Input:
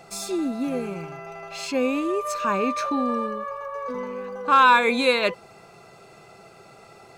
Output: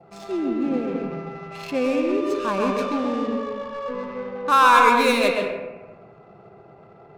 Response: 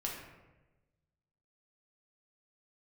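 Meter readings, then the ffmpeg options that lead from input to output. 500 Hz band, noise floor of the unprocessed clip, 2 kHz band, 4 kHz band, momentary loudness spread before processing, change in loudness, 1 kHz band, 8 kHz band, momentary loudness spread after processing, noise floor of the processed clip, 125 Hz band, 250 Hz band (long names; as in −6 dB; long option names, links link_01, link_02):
+2.5 dB, −50 dBFS, +0.5 dB, 0.0 dB, 17 LU, +1.5 dB, +2.0 dB, −2.0 dB, 17 LU, −49 dBFS, can't be measured, +3.0 dB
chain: -filter_complex "[0:a]adynamicequalizer=threshold=0.01:dfrequency=1800:dqfactor=2.1:tfrequency=1800:tqfactor=2.1:attack=5:release=100:ratio=0.375:range=2.5:mode=cutabove:tftype=bell,highpass=50,adynamicsmooth=sensitivity=5:basefreq=930,asplit=2[link_01][link_02];[link_02]lowpass=frequency=3100:poles=1[link_03];[1:a]atrim=start_sample=2205,adelay=129[link_04];[link_03][link_04]afir=irnorm=-1:irlink=0,volume=-2dB[link_05];[link_01][link_05]amix=inputs=2:normalize=0"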